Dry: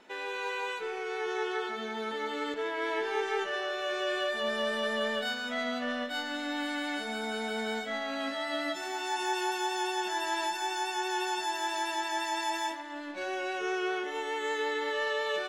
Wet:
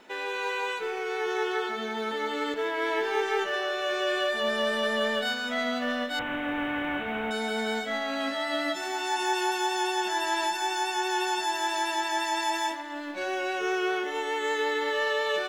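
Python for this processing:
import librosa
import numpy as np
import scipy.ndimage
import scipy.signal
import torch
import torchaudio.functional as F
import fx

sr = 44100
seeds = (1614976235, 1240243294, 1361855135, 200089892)

y = fx.delta_mod(x, sr, bps=16000, step_db=-36.5, at=(6.19, 7.31))
y = fx.quant_companded(y, sr, bits=8)
y = F.gain(torch.from_numpy(y), 4.0).numpy()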